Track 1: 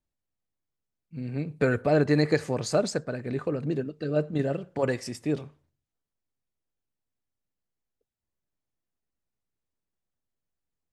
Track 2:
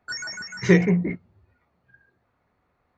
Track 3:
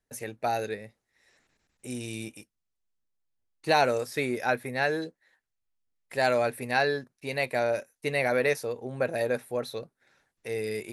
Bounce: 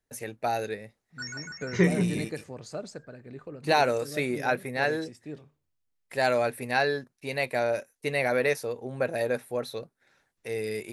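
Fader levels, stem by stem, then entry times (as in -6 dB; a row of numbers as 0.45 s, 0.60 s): -12.5 dB, -6.0 dB, 0.0 dB; 0.00 s, 1.10 s, 0.00 s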